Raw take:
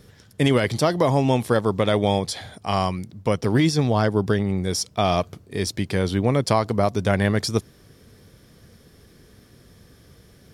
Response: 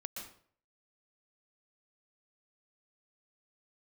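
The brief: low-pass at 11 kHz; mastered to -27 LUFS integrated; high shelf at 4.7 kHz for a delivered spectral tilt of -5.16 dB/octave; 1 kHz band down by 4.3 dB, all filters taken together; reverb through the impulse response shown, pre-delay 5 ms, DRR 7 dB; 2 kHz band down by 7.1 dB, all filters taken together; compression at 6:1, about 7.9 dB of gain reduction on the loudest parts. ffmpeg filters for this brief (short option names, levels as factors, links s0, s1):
-filter_complex "[0:a]lowpass=11000,equalizer=f=1000:t=o:g=-4.5,equalizer=f=2000:t=o:g=-8.5,highshelf=f=4700:g=6,acompressor=threshold=0.0631:ratio=6,asplit=2[s0][s1];[1:a]atrim=start_sample=2205,adelay=5[s2];[s1][s2]afir=irnorm=-1:irlink=0,volume=0.531[s3];[s0][s3]amix=inputs=2:normalize=0,volume=1.19"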